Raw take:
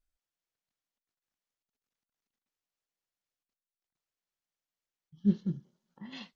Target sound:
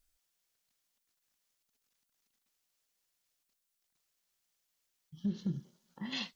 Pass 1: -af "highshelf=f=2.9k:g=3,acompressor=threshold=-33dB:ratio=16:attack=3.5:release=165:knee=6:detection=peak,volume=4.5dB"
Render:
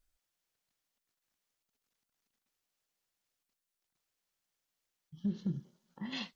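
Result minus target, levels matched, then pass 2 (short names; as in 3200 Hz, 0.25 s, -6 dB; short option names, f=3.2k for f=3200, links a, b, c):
8000 Hz band -4.5 dB
-af "highshelf=f=2.9k:g=9.5,acompressor=threshold=-33dB:ratio=16:attack=3.5:release=165:knee=6:detection=peak,volume=4.5dB"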